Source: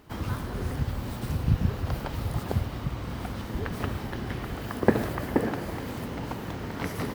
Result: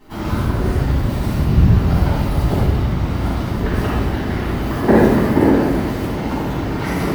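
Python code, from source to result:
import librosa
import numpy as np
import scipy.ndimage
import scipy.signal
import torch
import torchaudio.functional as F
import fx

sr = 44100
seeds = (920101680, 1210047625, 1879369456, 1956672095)

y = fx.room_shoebox(x, sr, seeds[0], volume_m3=660.0, walls='mixed', distance_m=9.7)
y = y * 10.0 ** (-5.5 / 20.0)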